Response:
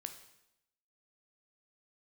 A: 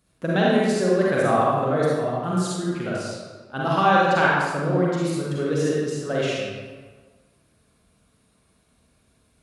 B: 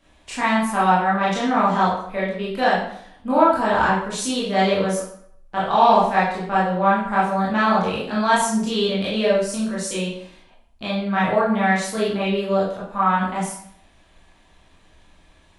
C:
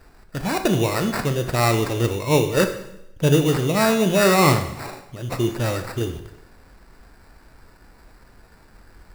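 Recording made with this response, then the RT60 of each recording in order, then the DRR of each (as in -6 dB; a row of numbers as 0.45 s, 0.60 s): C; 1.5 s, 0.65 s, 0.85 s; -6.0 dB, -8.0 dB, 6.5 dB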